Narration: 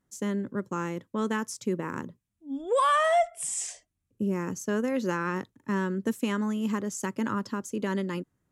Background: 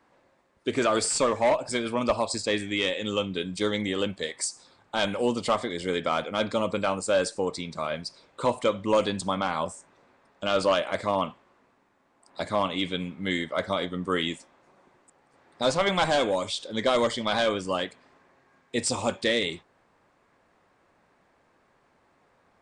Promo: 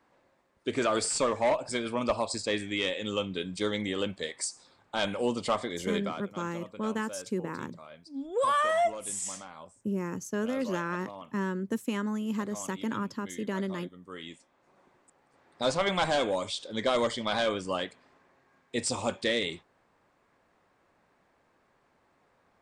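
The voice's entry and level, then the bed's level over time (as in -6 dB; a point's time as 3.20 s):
5.65 s, -3.0 dB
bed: 5.96 s -3.5 dB
6.29 s -18.5 dB
14.06 s -18.5 dB
14.79 s -3.5 dB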